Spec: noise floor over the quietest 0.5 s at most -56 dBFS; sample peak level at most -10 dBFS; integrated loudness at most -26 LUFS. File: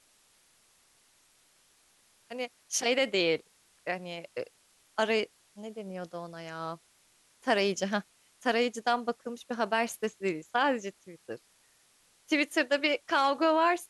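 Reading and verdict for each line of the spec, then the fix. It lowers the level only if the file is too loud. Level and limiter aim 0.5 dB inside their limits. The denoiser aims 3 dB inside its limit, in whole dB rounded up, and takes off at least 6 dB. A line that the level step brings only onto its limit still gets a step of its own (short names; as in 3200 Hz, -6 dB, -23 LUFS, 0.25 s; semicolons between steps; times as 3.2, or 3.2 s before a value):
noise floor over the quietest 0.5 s -66 dBFS: OK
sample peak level -13.5 dBFS: OK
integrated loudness -30.5 LUFS: OK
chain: none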